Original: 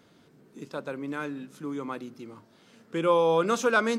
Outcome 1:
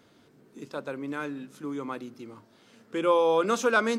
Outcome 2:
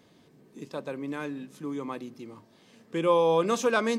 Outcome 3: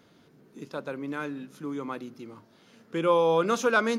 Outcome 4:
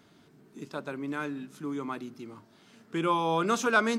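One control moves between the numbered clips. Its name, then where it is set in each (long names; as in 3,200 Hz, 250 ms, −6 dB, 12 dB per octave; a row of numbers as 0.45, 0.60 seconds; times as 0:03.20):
notch filter, centre frequency: 170, 1,400, 8,000, 510 Hertz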